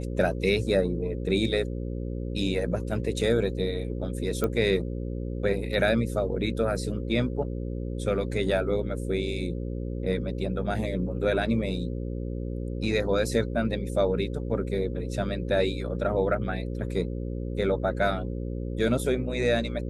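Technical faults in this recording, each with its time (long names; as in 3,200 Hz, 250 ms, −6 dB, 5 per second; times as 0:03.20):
mains buzz 60 Hz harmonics 9 −32 dBFS
0:04.44: click −14 dBFS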